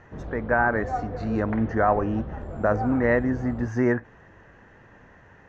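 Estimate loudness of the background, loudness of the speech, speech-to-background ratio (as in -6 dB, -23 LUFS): -35.0 LUFS, -25.0 LUFS, 10.0 dB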